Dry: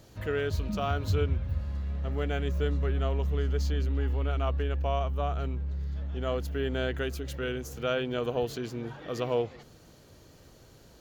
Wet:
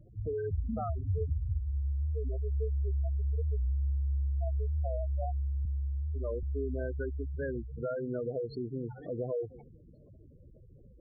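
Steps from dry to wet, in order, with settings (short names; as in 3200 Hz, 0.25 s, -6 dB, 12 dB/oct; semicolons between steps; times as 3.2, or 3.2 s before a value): compressor 3:1, threshold -30 dBFS, peak gain reduction 6.5 dB; low shelf 73 Hz +4 dB; notch 1800 Hz, Q 14; short-mantissa float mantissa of 2-bit; spectral gate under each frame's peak -10 dB strong; 5.65–6.43 HPF 57 Hz 24 dB/oct; record warp 45 rpm, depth 160 cents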